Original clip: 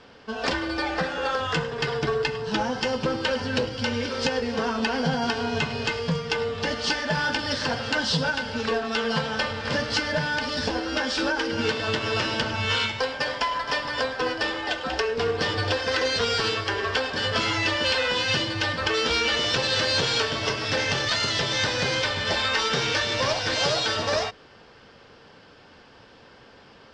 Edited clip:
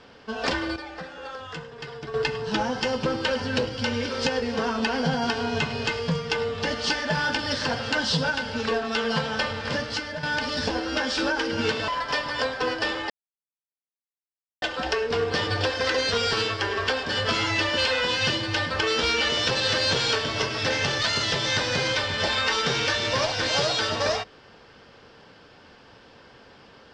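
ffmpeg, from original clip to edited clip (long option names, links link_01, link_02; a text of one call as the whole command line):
ffmpeg -i in.wav -filter_complex "[0:a]asplit=6[link_01][link_02][link_03][link_04][link_05][link_06];[link_01]atrim=end=0.762[link_07];[link_02]atrim=start=0.758:end=2.142,asetpts=PTS-STARTPTS,volume=-11dB[link_08];[link_03]atrim=start=2.138:end=10.23,asetpts=PTS-STARTPTS,afade=type=out:start_time=7.432:duration=0.66:silence=0.316228[link_09];[link_04]atrim=start=10.23:end=11.882,asetpts=PTS-STARTPTS,afade=type=in:duration=0.004:curve=hsin:silence=0.316228[link_10];[link_05]atrim=start=13.468:end=14.69,asetpts=PTS-STARTPTS,afade=type=out:start_time=1.218:duration=0.004:curve=hsin,apad=pad_dur=1.52[link_11];[link_06]atrim=start=14.69,asetpts=PTS-STARTPTS,afade=type=in:duration=0.004:curve=hsin[link_12];[link_07][link_08]acrossfade=duration=0.004:curve1=hsin:curve2=hsin[link_13];[link_09][link_10]concat=n=2:v=0:a=1[link_14];[link_13][link_14]acrossfade=duration=0.004:curve1=hsin:curve2=hsin[link_15];[link_11][link_12]concat=n=2:v=0:a=1[link_16];[link_15][link_16]acrossfade=duration=0.004:curve1=hsin:curve2=hsin" out.wav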